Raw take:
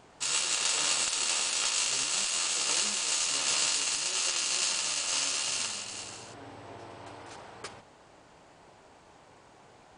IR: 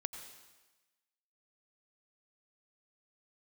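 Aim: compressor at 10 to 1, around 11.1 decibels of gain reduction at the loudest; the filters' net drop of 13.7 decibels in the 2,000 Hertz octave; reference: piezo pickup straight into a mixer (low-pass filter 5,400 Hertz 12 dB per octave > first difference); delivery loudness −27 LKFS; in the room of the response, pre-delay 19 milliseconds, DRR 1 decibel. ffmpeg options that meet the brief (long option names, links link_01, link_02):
-filter_complex "[0:a]equalizer=frequency=2000:width_type=o:gain=-6.5,acompressor=threshold=-37dB:ratio=10,asplit=2[link_01][link_02];[1:a]atrim=start_sample=2205,adelay=19[link_03];[link_02][link_03]afir=irnorm=-1:irlink=0,volume=0dB[link_04];[link_01][link_04]amix=inputs=2:normalize=0,lowpass=5400,aderivative,volume=15dB"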